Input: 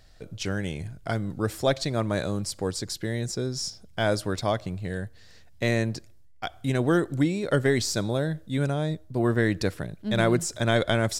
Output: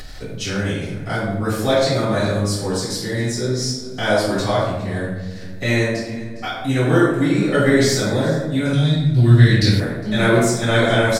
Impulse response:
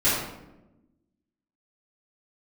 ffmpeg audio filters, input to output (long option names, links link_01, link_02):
-filter_complex "[0:a]lowshelf=frequency=400:gain=-6.5,aecho=1:1:408:0.106[link_01];[1:a]atrim=start_sample=2205,asetrate=39690,aresample=44100[link_02];[link_01][link_02]afir=irnorm=-1:irlink=0,acompressor=mode=upward:threshold=-16dB:ratio=2.5,asettb=1/sr,asplit=3[link_03][link_04][link_05];[link_03]atrim=end=8.734[link_06];[link_04]atrim=start=8.73:end=9.8,asetpts=PTS-STARTPTS,afade=type=in:duration=0.004:curve=qsin,afade=type=out:start_time=1.066:duration=0.004:curve=qsin,equalizer=frequency=125:width_type=o:width=1:gain=11,equalizer=frequency=500:width_type=o:width=1:gain=-7,equalizer=frequency=1000:width_type=o:width=1:gain=-9,equalizer=frequency=4000:width_type=o:width=1:gain=10[link_07];[link_05]atrim=start=9.796[link_08];[link_06][link_07]acrossfade=duration=0.004:curve1=hsin:curve2=qsin[link_09];[link_09][link_08]acrossfade=duration=0.004:curve1=qsin:curve2=hsin,volume=-6.5dB"